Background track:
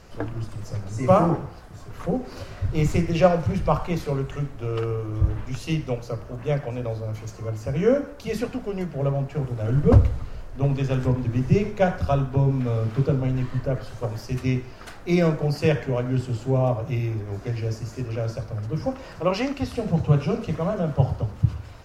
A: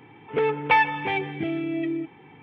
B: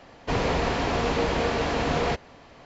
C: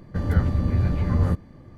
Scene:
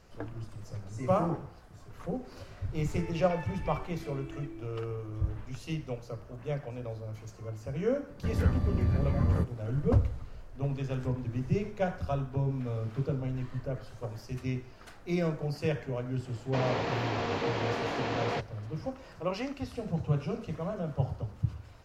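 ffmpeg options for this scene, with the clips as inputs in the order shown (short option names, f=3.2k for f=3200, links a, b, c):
-filter_complex "[0:a]volume=-10dB[a];[1:a]acompressor=threshold=-23dB:ratio=6:attack=3.2:release=140:knee=1:detection=peak[b];[2:a]highpass=160,lowpass=5.7k[c];[b]atrim=end=2.42,asetpts=PTS-STARTPTS,volume=-17dB,afade=t=in:d=0.004:c=hsin,afade=t=out:st=2.416:d=0.004:c=hsin,adelay=2600[d];[3:a]atrim=end=1.77,asetpts=PTS-STARTPTS,volume=-6dB,afade=t=in:d=0.004:c=hsin,afade=t=out:st=1.766:d=0.004:c=hsin,adelay=8090[e];[c]atrim=end=2.65,asetpts=PTS-STARTPTS,volume=-6.5dB,afade=t=in:d=0.004:c=hsin,afade=t=out:st=2.646:d=0.004:c=hsin,adelay=16250[f];[a][d][e][f]amix=inputs=4:normalize=0"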